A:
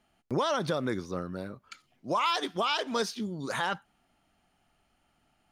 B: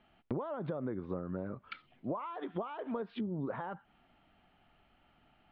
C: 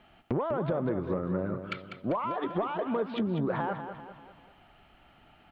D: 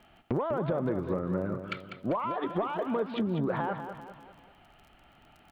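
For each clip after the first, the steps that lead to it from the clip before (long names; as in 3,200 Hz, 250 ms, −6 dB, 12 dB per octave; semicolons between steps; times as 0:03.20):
downward compressor 12 to 1, threshold −36 dBFS, peak gain reduction 13 dB; Butterworth low-pass 3,600 Hz 36 dB per octave; treble cut that deepens with the level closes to 930 Hz, closed at −36.5 dBFS; level +3.5 dB
parametric band 230 Hz −2.5 dB; harmonic generator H 5 −22 dB, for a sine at −22.5 dBFS; on a send: repeating echo 197 ms, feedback 47%, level −9 dB; on the sum: level +6 dB
surface crackle 30 per second −46 dBFS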